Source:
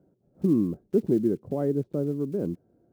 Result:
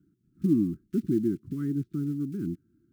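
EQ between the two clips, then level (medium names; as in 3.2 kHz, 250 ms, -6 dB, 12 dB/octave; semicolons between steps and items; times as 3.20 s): elliptic band-stop 330–1300 Hz, stop band 40 dB; 0.0 dB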